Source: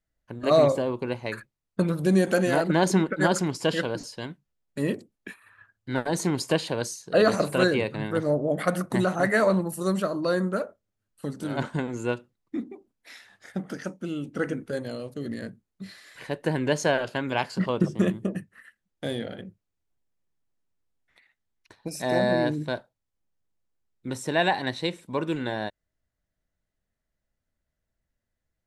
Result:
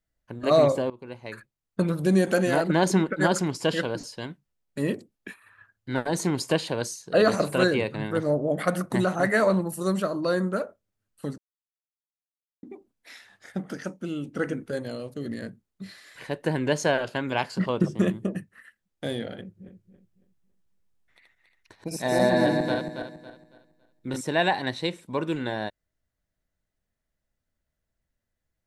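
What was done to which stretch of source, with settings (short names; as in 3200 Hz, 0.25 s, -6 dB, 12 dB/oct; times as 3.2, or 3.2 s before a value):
0.9–1.86 fade in, from -17 dB
11.38–12.63 mute
19.41–24.21 regenerating reverse delay 0.139 s, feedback 55%, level -3 dB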